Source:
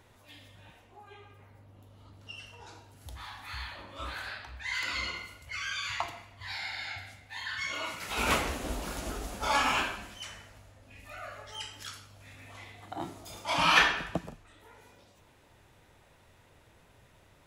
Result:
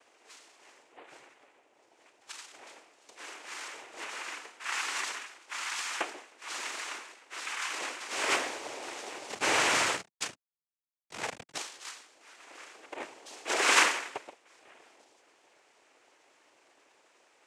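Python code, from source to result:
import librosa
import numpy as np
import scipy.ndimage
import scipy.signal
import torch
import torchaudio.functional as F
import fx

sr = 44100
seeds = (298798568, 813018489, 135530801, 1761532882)

y = scipy.signal.sosfilt(scipy.signal.butter(8, 440.0, 'highpass', fs=sr, output='sos'), x)
y = fx.quant_companded(y, sr, bits=2, at=(9.29, 11.58))
y = fx.noise_vocoder(y, sr, seeds[0], bands=4)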